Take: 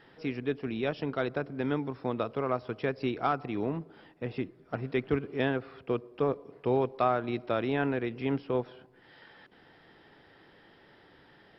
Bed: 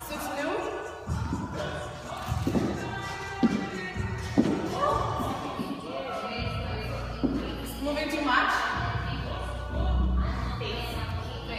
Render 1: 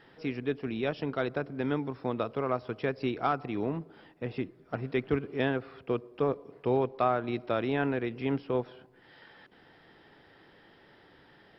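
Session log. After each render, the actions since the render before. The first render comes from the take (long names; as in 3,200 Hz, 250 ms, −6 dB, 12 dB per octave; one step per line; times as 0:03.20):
0:06.77–0:07.26: high-frequency loss of the air 61 metres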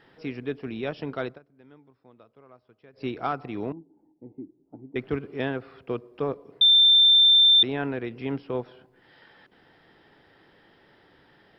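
0:01.26–0:03.06: duck −22.5 dB, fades 0.13 s
0:03.72–0:04.96: formant resonators in series u
0:06.61–0:07.63: beep over 3,570 Hz −13 dBFS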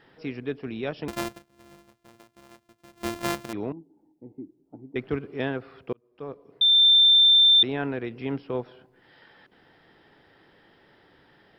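0:01.08–0:03.53: samples sorted by size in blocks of 128 samples
0:05.93–0:06.86: fade in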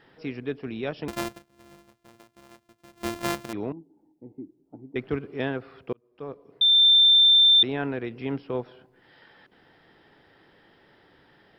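no processing that can be heard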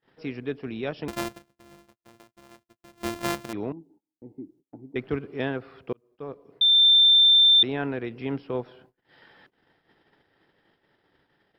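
noise gate −56 dBFS, range −28 dB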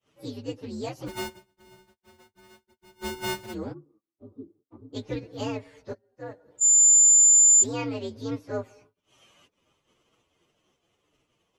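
partials spread apart or drawn together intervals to 126%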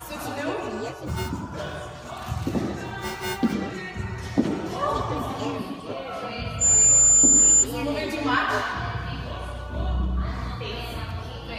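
mix in bed +0.5 dB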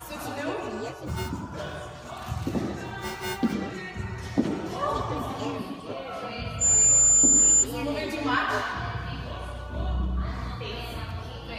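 level −2.5 dB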